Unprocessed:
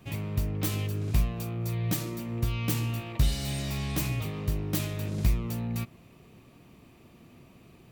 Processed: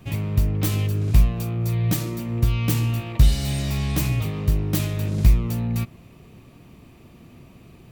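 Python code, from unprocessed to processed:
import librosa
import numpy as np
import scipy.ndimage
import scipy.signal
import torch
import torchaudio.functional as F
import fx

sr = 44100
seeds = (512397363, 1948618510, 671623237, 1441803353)

y = fx.low_shelf(x, sr, hz=140.0, db=6.5)
y = F.gain(torch.from_numpy(y), 4.5).numpy()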